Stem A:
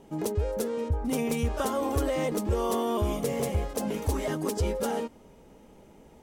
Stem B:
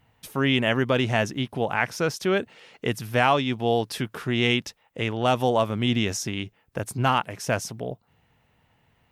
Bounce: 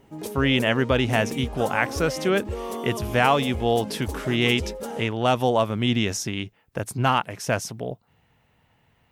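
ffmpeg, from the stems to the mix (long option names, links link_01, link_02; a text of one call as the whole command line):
ffmpeg -i stem1.wav -i stem2.wav -filter_complex "[0:a]volume=-4dB[link_01];[1:a]volume=1dB[link_02];[link_01][link_02]amix=inputs=2:normalize=0" out.wav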